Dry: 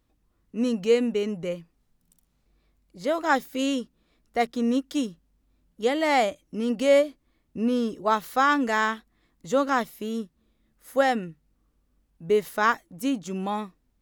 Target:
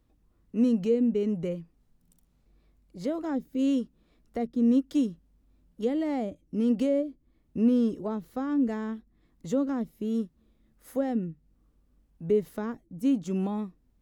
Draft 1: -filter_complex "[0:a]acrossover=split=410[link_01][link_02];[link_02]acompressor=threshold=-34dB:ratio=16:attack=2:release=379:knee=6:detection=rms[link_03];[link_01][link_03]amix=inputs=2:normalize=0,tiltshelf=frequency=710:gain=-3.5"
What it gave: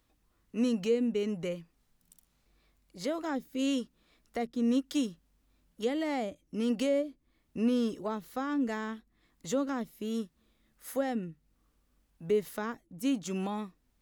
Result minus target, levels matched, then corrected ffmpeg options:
1,000 Hz band +5.5 dB
-filter_complex "[0:a]acrossover=split=410[link_01][link_02];[link_02]acompressor=threshold=-34dB:ratio=16:attack=2:release=379:knee=6:detection=rms[link_03];[link_01][link_03]amix=inputs=2:normalize=0,tiltshelf=frequency=710:gain=3.5"

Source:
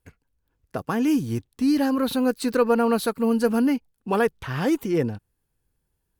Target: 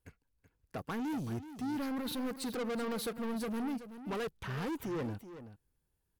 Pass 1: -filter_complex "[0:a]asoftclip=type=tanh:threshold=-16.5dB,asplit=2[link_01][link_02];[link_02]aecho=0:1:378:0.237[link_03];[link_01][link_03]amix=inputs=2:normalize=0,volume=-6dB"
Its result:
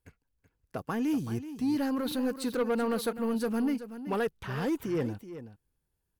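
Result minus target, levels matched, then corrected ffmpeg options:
soft clipping: distortion −9 dB
-filter_complex "[0:a]asoftclip=type=tanh:threshold=-28dB,asplit=2[link_01][link_02];[link_02]aecho=0:1:378:0.237[link_03];[link_01][link_03]amix=inputs=2:normalize=0,volume=-6dB"

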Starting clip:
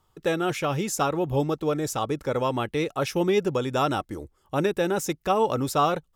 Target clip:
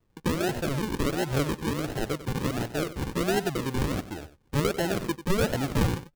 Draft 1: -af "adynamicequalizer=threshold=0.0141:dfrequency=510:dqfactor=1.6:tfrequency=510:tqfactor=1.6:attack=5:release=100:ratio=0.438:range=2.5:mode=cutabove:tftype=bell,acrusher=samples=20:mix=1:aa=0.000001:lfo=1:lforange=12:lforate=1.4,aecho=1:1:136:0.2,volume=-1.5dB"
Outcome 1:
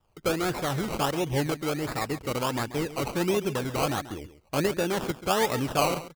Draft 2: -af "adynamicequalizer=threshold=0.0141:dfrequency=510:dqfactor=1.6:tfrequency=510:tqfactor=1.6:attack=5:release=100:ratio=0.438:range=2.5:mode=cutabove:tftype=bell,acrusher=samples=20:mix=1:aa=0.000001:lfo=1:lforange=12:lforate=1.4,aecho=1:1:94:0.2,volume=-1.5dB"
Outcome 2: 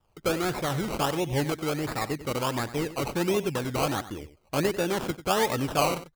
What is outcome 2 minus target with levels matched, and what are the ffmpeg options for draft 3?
sample-and-hold swept by an LFO: distortion −12 dB
-af "adynamicequalizer=threshold=0.0141:dfrequency=510:dqfactor=1.6:tfrequency=510:tqfactor=1.6:attack=5:release=100:ratio=0.438:range=2.5:mode=cutabove:tftype=bell,acrusher=samples=53:mix=1:aa=0.000001:lfo=1:lforange=31.8:lforate=1.4,aecho=1:1:94:0.2,volume=-1.5dB"

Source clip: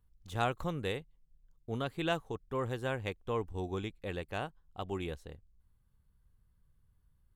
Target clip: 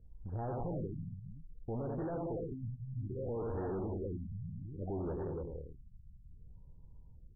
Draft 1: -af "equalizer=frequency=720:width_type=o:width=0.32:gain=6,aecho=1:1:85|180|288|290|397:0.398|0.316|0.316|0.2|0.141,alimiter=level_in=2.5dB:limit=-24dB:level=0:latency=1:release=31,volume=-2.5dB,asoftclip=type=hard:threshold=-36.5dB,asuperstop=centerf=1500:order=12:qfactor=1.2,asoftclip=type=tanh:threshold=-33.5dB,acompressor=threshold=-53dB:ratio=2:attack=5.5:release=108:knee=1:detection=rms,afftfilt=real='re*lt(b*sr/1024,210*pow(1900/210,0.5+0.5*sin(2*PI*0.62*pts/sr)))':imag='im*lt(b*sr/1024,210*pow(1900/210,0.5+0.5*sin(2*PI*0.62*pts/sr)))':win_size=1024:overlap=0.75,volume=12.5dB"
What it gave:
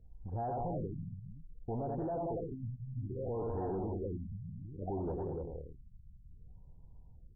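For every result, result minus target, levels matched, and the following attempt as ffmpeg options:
soft clipping: distortion −9 dB; 1,000 Hz band +4.5 dB
-af "equalizer=frequency=720:width_type=o:width=0.32:gain=6,aecho=1:1:85|180|288|290|397:0.398|0.316|0.316|0.2|0.141,alimiter=level_in=2.5dB:limit=-24dB:level=0:latency=1:release=31,volume=-2.5dB,asoftclip=type=hard:threshold=-36.5dB,asuperstop=centerf=1500:order=12:qfactor=1.2,asoftclip=type=tanh:threshold=-40.5dB,acompressor=threshold=-53dB:ratio=2:attack=5.5:release=108:knee=1:detection=rms,afftfilt=real='re*lt(b*sr/1024,210*pow(1900/210,0.5+0.5*sin(2*PI*0.62*pts/sr)))':imag='im*lt(b*sr/1024,210*pow(1900/210,0.5+0.5*sin(2*PI*0.62*pts/sr)))':win_size=1024:overlap=0.75,volume=12.5dB"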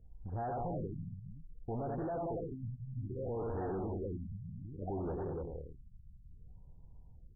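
1,000 Hz band +4.5 dB
-af "equalizer=frequency=720:width_type=o:width=0.32:gain=-4.5,aecho=1:1:85|180|288|290|397:0.398|0.316|0.316|0.2|0.141,alimiter=level_in=2.5dB:limit=-24dB:level=0:latency=1:release=31,volume=-2.5dB,asoftclip=type=hard:threshold=-36.5dB,asuperstop=centerf=1500:order=12:qfactor=1.2,asoftclip=type=tanh:threshold=-40.5dB,acompressor=threshold=-53dB:ratio=2:attack=5.5:release=108:knee=1:detection=rms,afftfilt=real='re*lt(b*sr/1024,210*pow(1900/210,0.5+0.5*sin(2*PI*0.62*pts/sr)))':imag='im*lt(b*sr/1024,210*pow(1900/210,0.5+0.5*sin(2*PI*0.62*pts/sr)))':win_size=1024:overlap=0.75,volume=12.5dB"

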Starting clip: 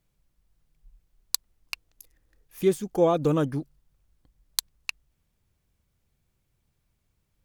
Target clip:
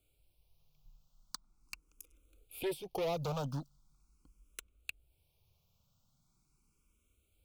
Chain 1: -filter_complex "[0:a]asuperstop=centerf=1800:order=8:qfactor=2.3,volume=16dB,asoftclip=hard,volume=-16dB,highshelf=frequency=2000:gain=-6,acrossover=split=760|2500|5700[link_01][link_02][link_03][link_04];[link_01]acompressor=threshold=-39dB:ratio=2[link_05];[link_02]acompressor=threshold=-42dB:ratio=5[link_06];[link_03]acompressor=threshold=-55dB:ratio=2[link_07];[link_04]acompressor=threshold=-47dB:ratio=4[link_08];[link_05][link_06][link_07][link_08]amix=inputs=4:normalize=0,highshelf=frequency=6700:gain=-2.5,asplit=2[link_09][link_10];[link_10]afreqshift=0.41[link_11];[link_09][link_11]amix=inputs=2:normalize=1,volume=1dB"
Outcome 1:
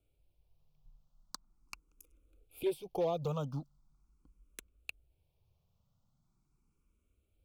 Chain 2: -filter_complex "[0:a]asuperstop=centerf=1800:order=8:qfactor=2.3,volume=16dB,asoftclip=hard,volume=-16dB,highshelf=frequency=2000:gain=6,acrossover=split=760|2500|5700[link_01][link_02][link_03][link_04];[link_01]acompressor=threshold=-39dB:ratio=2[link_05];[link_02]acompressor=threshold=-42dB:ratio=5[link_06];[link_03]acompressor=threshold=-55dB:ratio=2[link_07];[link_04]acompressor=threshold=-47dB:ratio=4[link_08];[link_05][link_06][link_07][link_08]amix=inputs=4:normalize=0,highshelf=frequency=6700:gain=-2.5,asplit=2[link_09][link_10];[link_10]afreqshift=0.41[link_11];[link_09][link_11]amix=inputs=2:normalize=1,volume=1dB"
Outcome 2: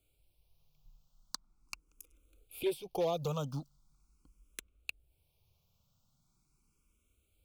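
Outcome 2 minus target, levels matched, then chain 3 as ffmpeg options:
gain into a clipping stage and back: distortion −9 dB
-filter_complex "[0:a]asuperstop=centerf=1800:order=8:qfactor=2.3,volume=24.5dB,asoftclip=hard,volume=-24.5dB,highshelf=frequency=2000:gain=6,acrossover=split=760|2500|5700[link_01][link_02][link_03][link_04];[link_01]acompressor=threshold=-39dB:ratio=2[link_05];[link_02]acompressor=threshold=-42dB:ratio=5[link_06];[link_03]acompressor=threshold=-55dB:ratio=2[link_07];[link_04]acompressor=threshold=-47dB:ratio=4[link_08];[link_05][link_06][link_07][link_08]amix=inputs=4:normalize=0,highshelf=frequency=6700:gain=-2.5,asplit=2[link_09][link_10];[link_10]afreqshift=0.41[link_11];[link_09][link_11]amix=inputs=2:normalize=1,volume=1dB"

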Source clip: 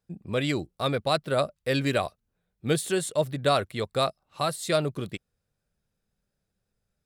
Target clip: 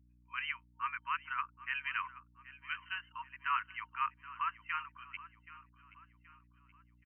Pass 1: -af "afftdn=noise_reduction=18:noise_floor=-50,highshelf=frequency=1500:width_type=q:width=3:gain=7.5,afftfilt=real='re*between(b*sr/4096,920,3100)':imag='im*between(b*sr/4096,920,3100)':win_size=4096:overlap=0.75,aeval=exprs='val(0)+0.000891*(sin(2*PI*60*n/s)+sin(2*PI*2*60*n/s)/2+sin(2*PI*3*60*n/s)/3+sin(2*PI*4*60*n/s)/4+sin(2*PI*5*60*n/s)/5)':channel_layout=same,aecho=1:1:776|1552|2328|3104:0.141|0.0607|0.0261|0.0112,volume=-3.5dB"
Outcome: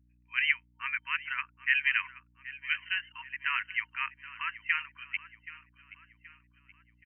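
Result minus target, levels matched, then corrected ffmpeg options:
2,000 Hz band +2.5 dB
-af "afftdn=noise_reduction=18:noise_floor=-50,afftfilt=real='re*between(b*sr/4096,920,3100)':imag='im*between(b*sr/4096,920,3100)':win_size=4096:overlap=0.75,aeval=exprs='val(0)+0.000891*(sin(2*PI*60*n/s)+sin(2*PI*2*60*n/s)/2+sin(2*PI*3*60*n/s)/3+sin(2*PI*4*60*n/s)/4+sin(2*PI*5*60*n/s)/5)':channel_layout=same,aecho=1:1:776|1552|2328|3104:0.141|0.0607|0.0261|0.0112,volume=-3.5dB"

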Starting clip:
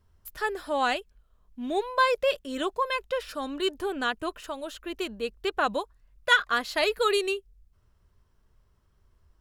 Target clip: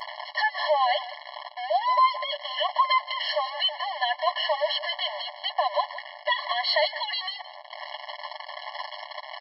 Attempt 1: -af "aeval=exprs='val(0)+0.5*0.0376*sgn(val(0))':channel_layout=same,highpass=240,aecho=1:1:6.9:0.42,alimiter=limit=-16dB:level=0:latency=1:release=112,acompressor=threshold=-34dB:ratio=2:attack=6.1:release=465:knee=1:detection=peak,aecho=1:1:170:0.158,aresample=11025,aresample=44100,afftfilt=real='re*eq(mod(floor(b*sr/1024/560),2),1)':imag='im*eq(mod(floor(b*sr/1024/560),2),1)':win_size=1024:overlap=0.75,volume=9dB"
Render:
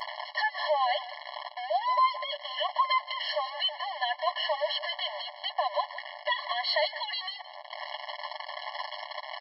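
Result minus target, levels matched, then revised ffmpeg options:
downward compressor: peak gain reduction +4 dB
-af "aeval=exprs='val(0)+0.5*0.0376*sgn(val(0))':channel_layout=same,highpass=240,aecho=1:1:6.9:0.42,alimiter=limit=-16dB:level=0:latency=1:release=112,acompressor=threshold=-26dB:ratio=2:attack=6.1:release=465:knee=1:detection=peak,aecho=1:1:170:0.158,aresample=11025,aresample=44100,afftfilt=real='re*eq(mod(floor(b*sr/1024/560),2),1)':imag='im*eq(mod(floor(b*sr/1024/560),2),1)':win_size=1024:overlap=0.75,volume=9dB"

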